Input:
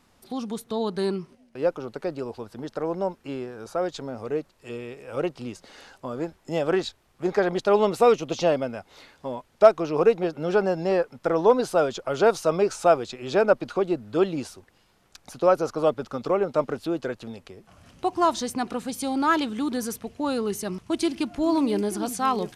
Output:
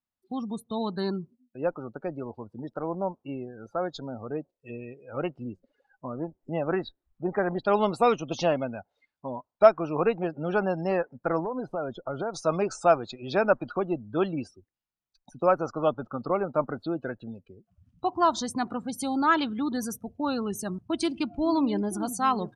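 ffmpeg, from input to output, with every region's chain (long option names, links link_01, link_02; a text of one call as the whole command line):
ffmpeg -i in.wav -filter_complex "[0:a]asettb=1/sr,asplit=3[link_01][link_02][link_03];[link_01]atrim=end=5.444[link_04];[link_02]atrim=start=5.44:end=7.6,asetpts=PTS-STARTPTS,afade=type=in:duration=0.004:curve=qsin,afade=type=out:start_time=2.156:duration=0.004:curve=qsin,equalizer=frequency=7500:width_type=o:width=2.7:gain=-9.5,acompressor=mode=upward:threshold=-45dB:ratio=2.5:attack=3.2:release=140:knee=2.83:detection=peak[link_05];[link_03]atrim=start=7.596[link_06];[link_04][link_05]acrossfade=duration=0.004:curve1=hsin:curve2=qsin[link_07];[link_07][link_06]acrossfade=duration=0.004:curve1=qsin:curve2=hsin,asettb=1/sr,asplit=3[link_08][link_09][link_10];[link_08]atrim=end=11.394[link_11];[link_09]atrim=start=11.39:end=12.34,asetpts=PTS-STARTPTS,afade=type=in:duration=0.004:curve=qsin,afade=type=out:start_time=0.946:duration=0.004:curve=qsin,highshelf=frequency=2400:gain=-11,acompressor=threshold=-24dB:ratio=4:attack=3.2:release=140:knee=1:detection=peak,volume=20dB,asoftclip=hard,volume=-20dB[link_12];[link_10]atrim=start=12.336[link_13];[link_11][link_12]acrossfade=duration=0.004:curve1=hsin:curve2=qsin[link_14];[link_14][link_13]acrossfade=duration=0.004:curve1=qsin:curve2=hsin,afftdn=noise_reduction=34:noise_floor=-38,equalizer=frequency=440:width=2:gain=-7" out.wav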